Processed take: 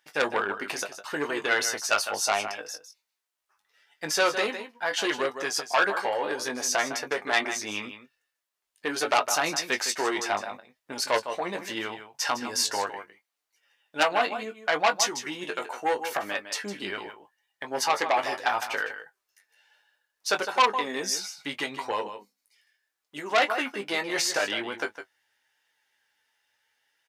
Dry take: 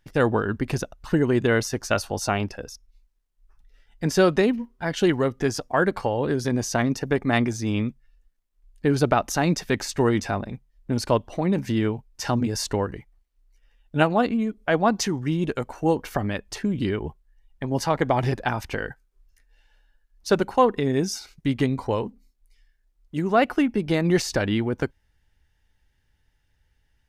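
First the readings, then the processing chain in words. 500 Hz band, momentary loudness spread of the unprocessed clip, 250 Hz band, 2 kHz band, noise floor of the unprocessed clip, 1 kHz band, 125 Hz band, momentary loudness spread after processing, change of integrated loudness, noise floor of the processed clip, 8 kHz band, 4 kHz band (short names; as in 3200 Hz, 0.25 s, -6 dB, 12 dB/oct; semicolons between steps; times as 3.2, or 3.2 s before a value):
-6.0 dB, 10 LU, -14.0 dB, +2.5 dB, -69 dBFS, 0.0 dB, -25.0 dB, 12 LU, -3.0 dB, -84 dBFS, +4.0 dB, +4.0 dB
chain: HPF 750 Hz 12 dB/oct; flange 0.74 Hz, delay 5.9 ms, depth 5.6 ms, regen +38%; doubler 20 ms -8.5 dB; on a send: echo 0.157 s -11.5 dB; on the sum: core saturation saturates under 3400 Hz; gain +7 dB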